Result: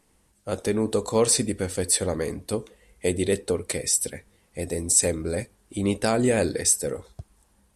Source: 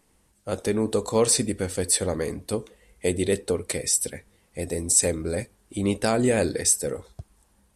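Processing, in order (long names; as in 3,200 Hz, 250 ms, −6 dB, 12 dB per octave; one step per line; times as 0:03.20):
linear-phase brick-wall low-pass 13,000 Hz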